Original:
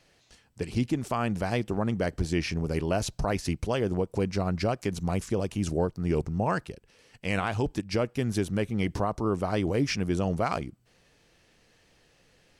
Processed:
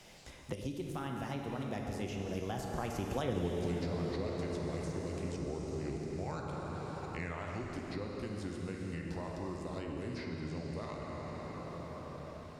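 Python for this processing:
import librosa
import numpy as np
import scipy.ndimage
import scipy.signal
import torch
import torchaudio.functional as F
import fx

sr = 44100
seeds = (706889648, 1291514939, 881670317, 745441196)

y = fx.doppler_pass(x, sr, speed_mps=49, closest_m=5.1, pass_at_s=3.39)
y = fx.rev_plate(y, sr, seeds[0], rt60_s=3.7, hf_ratio=0.65, predelay_ms=0, drr_db=-0.5)
y = fx.band_squash(y, sr, depth_pct=100)
y = y * librosa.db_to_amplitude(7.5)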